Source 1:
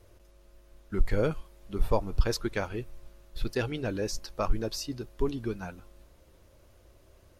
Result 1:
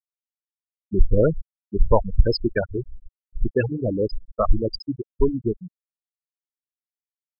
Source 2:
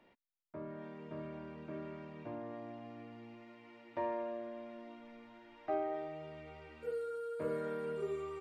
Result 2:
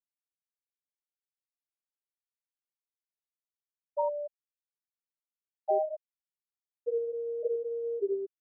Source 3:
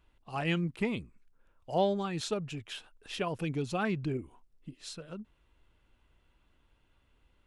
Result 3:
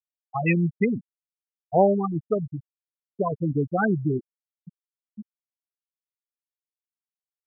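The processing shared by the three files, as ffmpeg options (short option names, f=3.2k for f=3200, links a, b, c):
-af "acontrast=80,afftfilt=real='re*gte(hypot(re,im),0.224)':imag='im*gte(hypot(re,im),0.224)':win_size=1024:overlap=0.75,highshelf=f=3.1k:g=10.5,volume=2.5dB"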